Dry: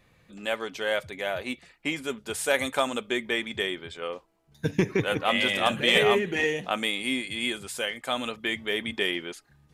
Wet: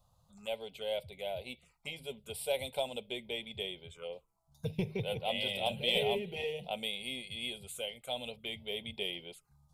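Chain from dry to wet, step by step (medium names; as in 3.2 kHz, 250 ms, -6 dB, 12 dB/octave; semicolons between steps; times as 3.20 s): touch-sensitive phaser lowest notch 380 Hz, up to 1.2 kHz, full sweep at -30 dBFS; static phaser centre 720 Hz, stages 4; de-hum 156.2 Hz, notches 2; trim -3 dB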